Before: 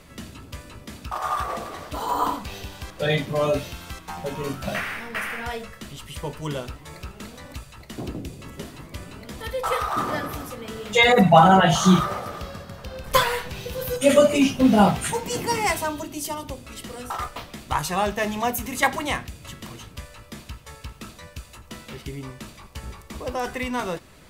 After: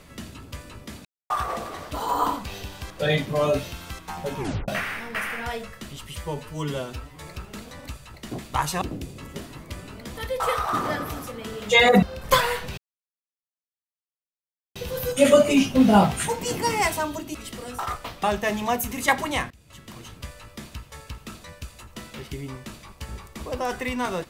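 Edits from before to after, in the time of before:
1.05–1.30 s: mute
4.38 s: tape stop 0.30 s
6.16–6.83 s: stretch 1.5×
11.26–12.85 s: delete
13.60 s: insert silence 1.98 s
16.19–16.66 s: delete
17.55–17.98 s: move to 8.05 s
19.25–19.92 s: fade in, from -21.5 dB

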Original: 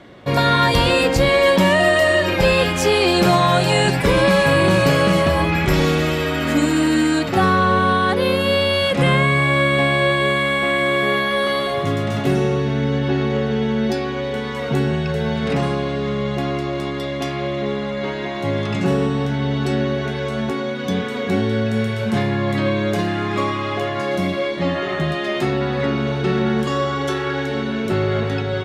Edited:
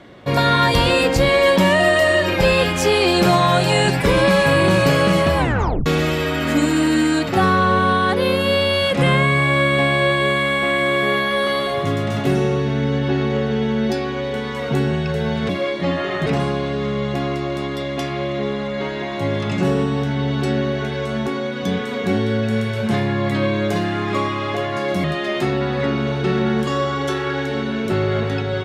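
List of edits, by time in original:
5.38 s: tape stop 0.48 s
24.27–25.04 s: move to 15.49 s

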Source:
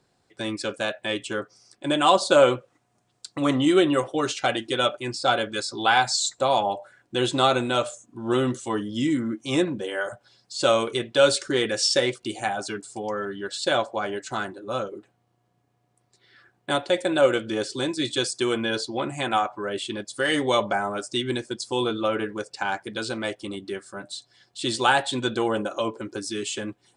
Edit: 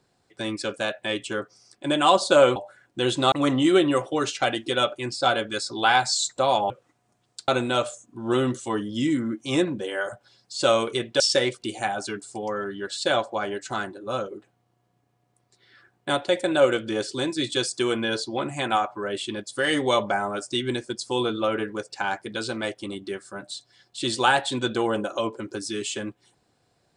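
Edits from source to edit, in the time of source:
2.56–3.34 s: swap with 6.72–7.48 s
11.20–11.81 s: delete

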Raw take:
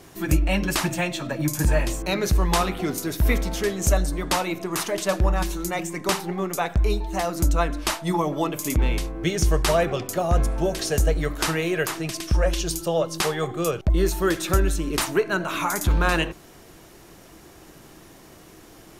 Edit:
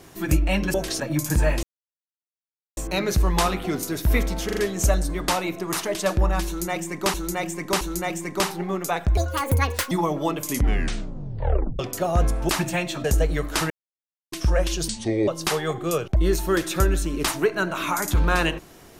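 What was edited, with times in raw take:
0.74–1.29 s: swap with 10.65–10.91 s
1.92 s: insert silence 1.14 s
3.60 s: stutter 0.04 s, 4 plays
5.50–6.17 s: loop, 3 plays
6.86–8.07 s: speed 163%
8.65 s: tape stop 1.30 s
11.57–12.19 s: mute
12.75–13.01 s: speed 66%

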